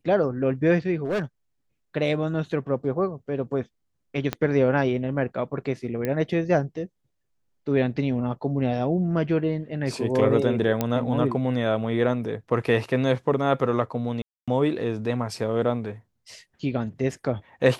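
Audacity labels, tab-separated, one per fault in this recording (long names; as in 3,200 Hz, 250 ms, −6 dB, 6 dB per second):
1.040000	1.220000	clipping −22 dBFS
4.330000	4.330000	click −11 dBFS
6.050000	6.050000	click −14 dBFS
10.810000	10.810000	click −9 dBFS
14.220000	14.480000	drop-out 256 ms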